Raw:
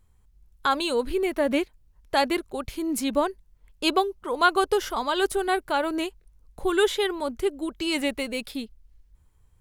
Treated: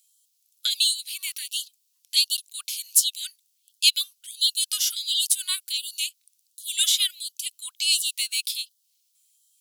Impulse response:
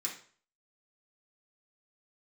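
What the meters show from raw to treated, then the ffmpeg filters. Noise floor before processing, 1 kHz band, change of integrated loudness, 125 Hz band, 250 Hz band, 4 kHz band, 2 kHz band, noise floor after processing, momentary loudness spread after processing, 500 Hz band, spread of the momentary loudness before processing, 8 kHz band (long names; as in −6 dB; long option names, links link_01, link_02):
−61 dBFS, below −30 dB, +2.5 dB, can't be measured, below −40 dB, +10.0 dB, −6.5 dB, −71 dBFS, 12 LU, below −40 dB, 8 LU, +15.0 dB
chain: -af "aexciter=amount=14.9:drive=7.1:freq=2700,afftfilt=real='re*gte(b*sr/1024,980*pow(2900/980,0.5+0.5*sin(2*PI*1.4*pts/sr)))':imag='im*gte(b*sr/1024,980*pow(2900/980,0.5+0.5*sin(2*PI*1.4*pts/sr)))':win_size=1024:overlap=0.75,volume=-13dB"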